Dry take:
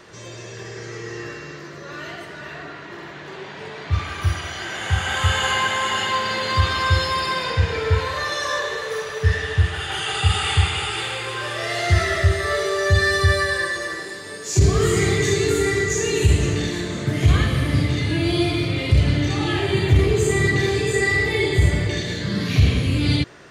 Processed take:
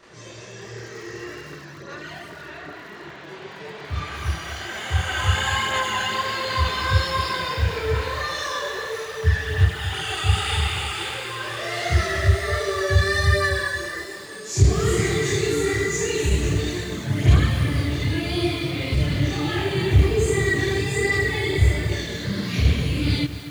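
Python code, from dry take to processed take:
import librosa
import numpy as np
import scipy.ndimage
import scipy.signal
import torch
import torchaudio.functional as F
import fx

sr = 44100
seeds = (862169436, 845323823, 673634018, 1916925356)

y = fx.chorus_voices(x, sr, voices=2, hz=1.3, base_ms=28, depth_ms=3.4, mix_pct=65)
y = fx.echo_crushed(y, sr, ms=237, feedback_pct=35, bits=6, wet_db=-11.5)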